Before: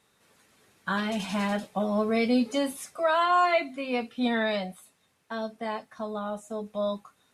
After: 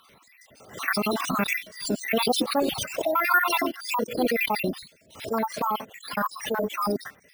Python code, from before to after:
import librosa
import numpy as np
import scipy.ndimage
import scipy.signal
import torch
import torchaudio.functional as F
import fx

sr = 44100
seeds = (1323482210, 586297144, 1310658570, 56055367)

p1 = fx.spec_dropout(x, sr, seeds[0], share_pct=65)
p2 = fx.over_compress(p1, sr, threshold_db=-38.0, ratio=-1.0)
p3 = p1 + (p2 * 10.0 ** (2.0 / 20.0))
p4 = fx.formant_shift(p3, sr, semitones=5)
p5 = np.repeat(p4[::3], 3)[:len(p4)]
p6 = fx.pre_swell(p5, sr, db_per_s=130.0)
y = p6 * 10.0 ** (3.0 / 20.0)